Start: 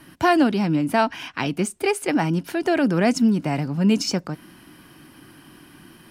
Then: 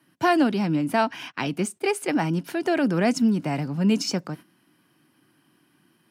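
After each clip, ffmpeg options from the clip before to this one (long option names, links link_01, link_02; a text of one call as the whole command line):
ffmpeg -i in.wav -af "agate=range=-13dB:threshold=-36dB:ratio=16:detection=peak,highpass=frequency=110:width=0.5412,highpass=frequency=110:width=1.3066,volume=-2.5dB" out.wav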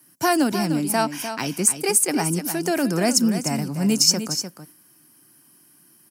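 ffmpeg -i in.wav -filter_complex "[0:a]aexciter=amount=8.9:drive=1.4:freq=5000,asplit=2[link_01][link_02];[link_02]aecho=0:1:301:0.335[link_03];[link_01][link_03]amix=inputs=2:normalize=0" out.wav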